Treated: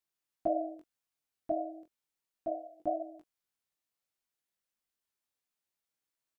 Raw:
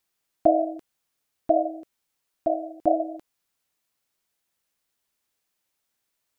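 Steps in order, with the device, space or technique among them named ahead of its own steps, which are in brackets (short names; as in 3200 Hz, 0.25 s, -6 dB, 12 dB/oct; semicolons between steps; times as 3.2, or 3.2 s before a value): double-tracked vocal (doubler 23 ms -13 dB; chorus 0.33 Hz, delay 16.5 ms, depth 6 ms); gain -8.5 dB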